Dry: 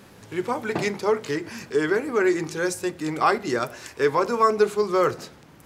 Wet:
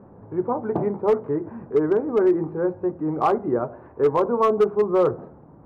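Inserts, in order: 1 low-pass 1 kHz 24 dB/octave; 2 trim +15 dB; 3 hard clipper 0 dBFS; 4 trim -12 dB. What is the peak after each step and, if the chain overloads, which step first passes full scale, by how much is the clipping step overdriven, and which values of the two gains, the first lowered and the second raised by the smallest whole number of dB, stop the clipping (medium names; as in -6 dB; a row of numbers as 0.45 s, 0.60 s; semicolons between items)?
-9.0 dBFS, +6.0 dBFS, 0.0 dBFS, -12.0 dBFS; step 2, 6.0 dB; step 2 +9 dB, step 4 -6 dB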